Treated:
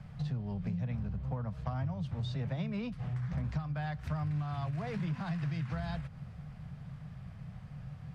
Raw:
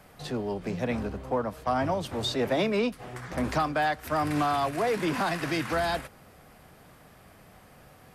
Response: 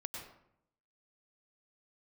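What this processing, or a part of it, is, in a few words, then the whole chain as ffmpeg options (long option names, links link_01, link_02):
jukebox: -af "lowpass=5100,lowshelf=frequency=220:width_type=q:width=3:gain=13.5,acompressor=threshold=-28dB:ratio=5,volume=-5.5dB"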